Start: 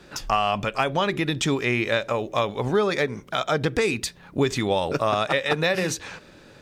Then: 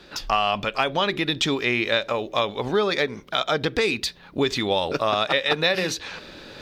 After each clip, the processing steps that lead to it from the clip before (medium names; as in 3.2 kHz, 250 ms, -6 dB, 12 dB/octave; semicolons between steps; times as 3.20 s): ten-band graphic EQ 125 Hz -6 dB, 4 kHz +8 dB, 8 kHz -7 dB; reverse; upward compressor, threshold -33 dBFS; reverse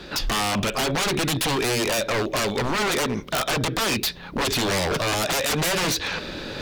bass shelf 320 Hz +4 dB; in parallel at -2 dB: peak limiter -18 dBFS, peak gain reduction 10 dB; on the sum: wavefolder -20.5 dBFS; trim +2.5 dB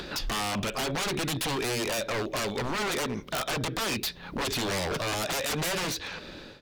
fade out at the end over 0.85 s; upward compressor, threshold -26 dBFS; trim -6.5 dB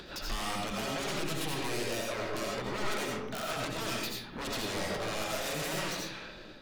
algorithmic reverb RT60 0.78 s, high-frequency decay 0.55×, pre-delay 45 ms, DRR -2.5 dB; trim -9 dB